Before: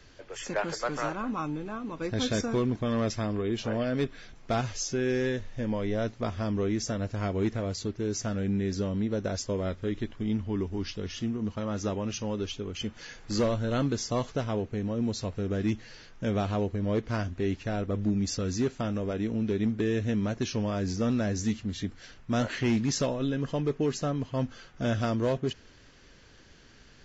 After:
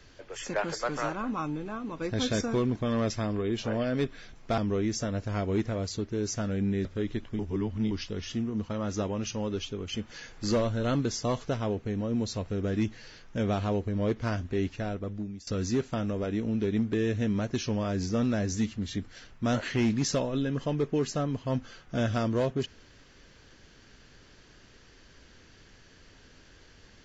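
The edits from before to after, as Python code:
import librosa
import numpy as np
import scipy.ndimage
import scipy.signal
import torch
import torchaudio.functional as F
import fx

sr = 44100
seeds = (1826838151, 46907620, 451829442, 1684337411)

y = fx.edit(x, sr, fx.cut(start_s=4.58, length_s=1.87),
    fx.cut(start_s=8.72, length_s=1.0),
    fx.reverse_span(start_s=10.26, length_s=0.52),
    fx.fade_out_to(start_s=17.55, length_s=0.79, floor_db=-21.0), tone=tone)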